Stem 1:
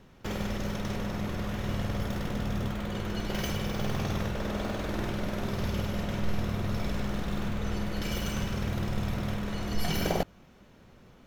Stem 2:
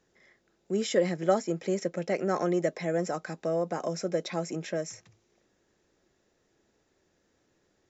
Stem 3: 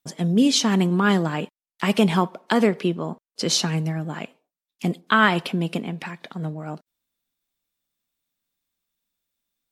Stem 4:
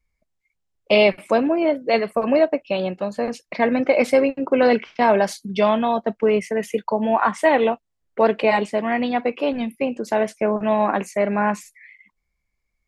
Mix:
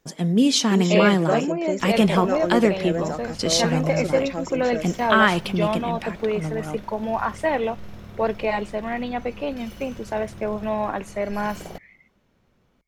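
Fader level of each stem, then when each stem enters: −9.5, +1.5, 0.0, −6.0 decibels; 1.55, 0.00, 0.00, 0.00 seconds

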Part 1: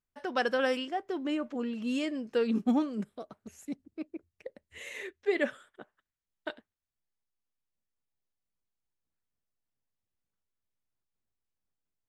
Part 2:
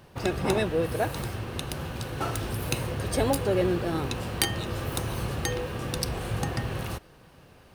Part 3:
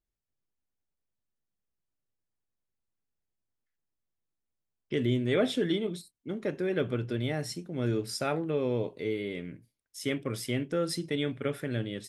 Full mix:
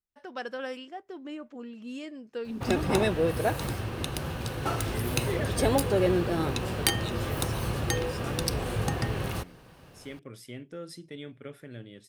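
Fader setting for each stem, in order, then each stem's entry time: −7.5, +0.5, −11.0 decibels; 0.00, 2.45, 0.00 seconds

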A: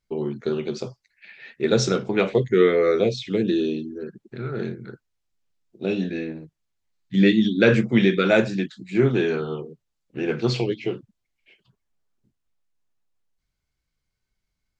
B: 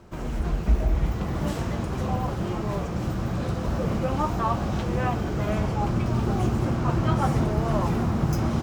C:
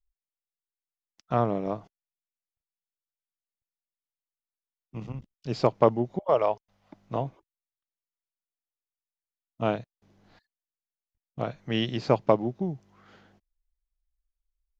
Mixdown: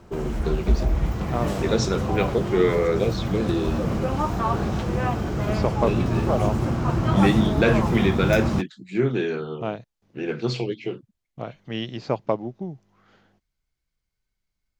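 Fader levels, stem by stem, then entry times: −3.0, +1.0, −2.5 decibels; 0.00, 0.00, 0.00 seconds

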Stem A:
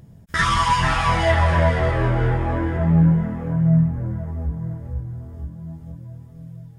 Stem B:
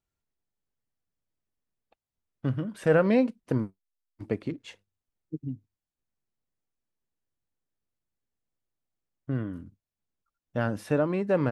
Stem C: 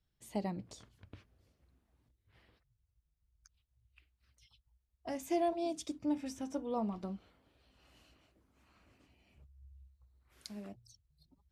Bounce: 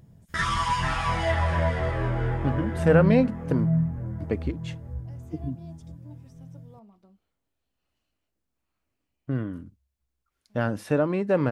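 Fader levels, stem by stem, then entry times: −7.0, +2.0, −16.5 decibels; 0.00, 0.00, 0.00 seconds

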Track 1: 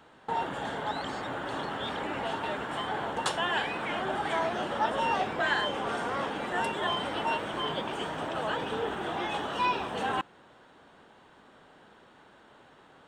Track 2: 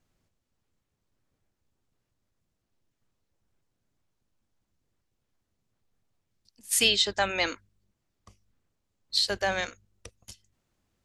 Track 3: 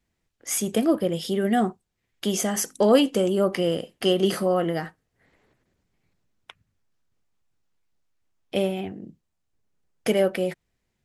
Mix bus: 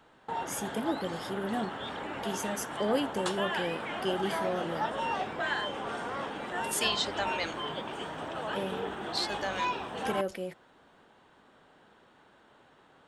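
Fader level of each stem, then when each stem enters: −4.0, −7.5, −11.5 decibels; 0.00, 0.00, 0.00 seconds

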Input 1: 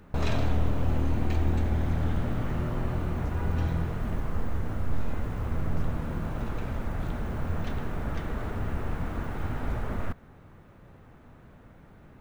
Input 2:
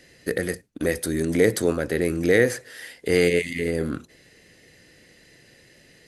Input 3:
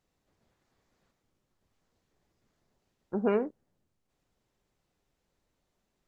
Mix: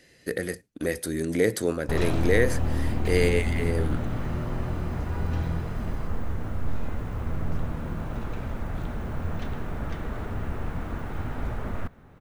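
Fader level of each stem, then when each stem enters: 0.0 dB, −4.0 dB, muted; 1.75 s, 0.00 s, muted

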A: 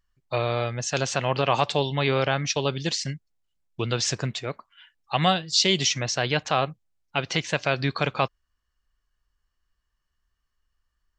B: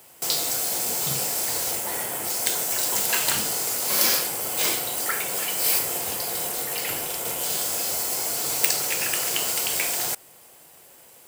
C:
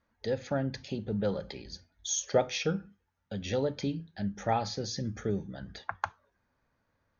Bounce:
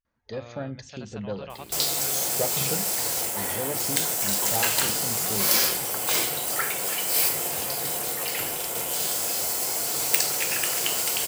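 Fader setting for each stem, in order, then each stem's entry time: −19.0, −0.5, −3.0 decibels; 0.00, 1.50, 0.05 seconds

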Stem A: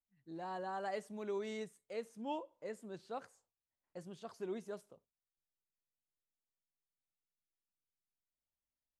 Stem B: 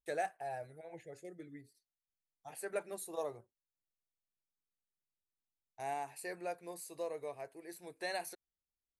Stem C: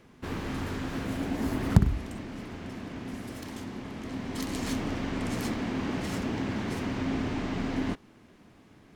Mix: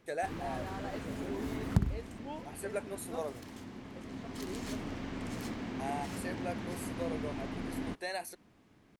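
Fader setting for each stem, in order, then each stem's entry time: −3.5, +1.0, −8.0 decibels; 0.00, 0.00, 0.00 seconds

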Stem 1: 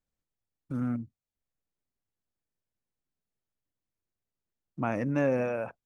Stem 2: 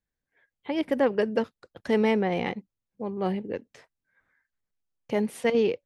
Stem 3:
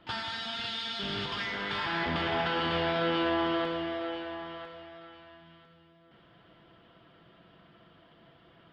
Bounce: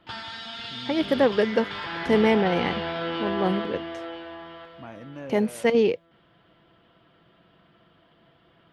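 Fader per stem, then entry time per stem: −12.0, +3.0, −1.0 decibels; 0.00, 0.20, 0.00 seconds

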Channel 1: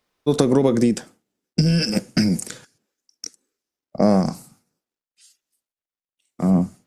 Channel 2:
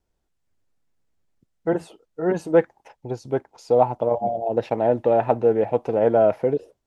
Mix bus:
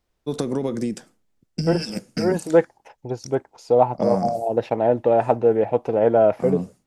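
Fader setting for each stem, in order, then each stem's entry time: −8.0, +1.0 decibels; 0.00, 0.00 seconds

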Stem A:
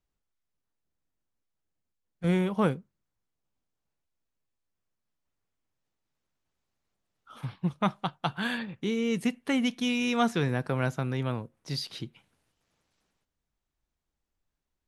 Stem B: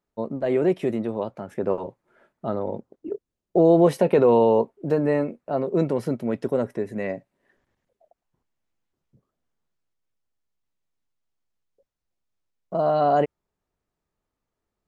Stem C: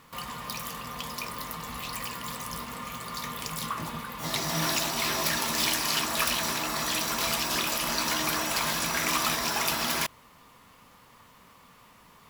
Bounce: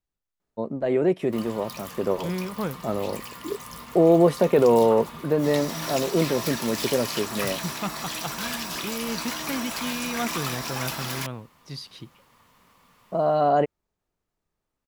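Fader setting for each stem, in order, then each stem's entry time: −4.0, −0.5, −4.0 decibels; 0.00, 0.40, 1.20 seconds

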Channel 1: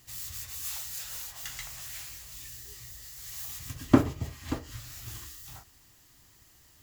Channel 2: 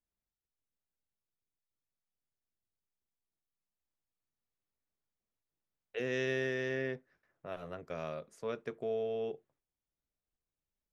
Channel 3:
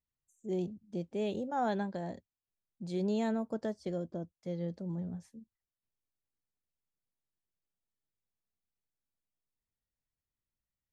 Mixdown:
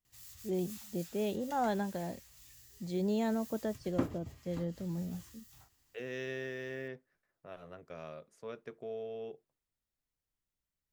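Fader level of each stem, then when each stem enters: −13.5, −6.0, 0.0 decibels; 0.05, 0.00, 0.00 seconds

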